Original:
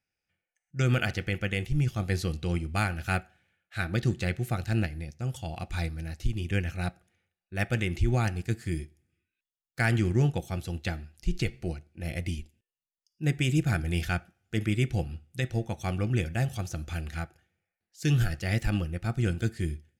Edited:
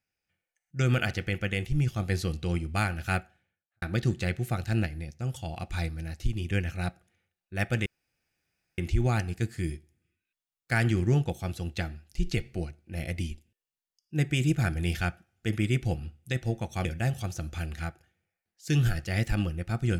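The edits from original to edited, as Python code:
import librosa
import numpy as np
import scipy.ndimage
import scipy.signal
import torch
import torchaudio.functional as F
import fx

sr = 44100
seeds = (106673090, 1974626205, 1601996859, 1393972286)

y = fx.studio_fade_out(x, sr, start_s=3.18, length_s=0.64)
y = fx.edit(y, sr, fx.insert_room_tone(at_s=7.86, length_s=0.92),
    fx.cut(start_s=15.93, length_s=0.27), tone=tone)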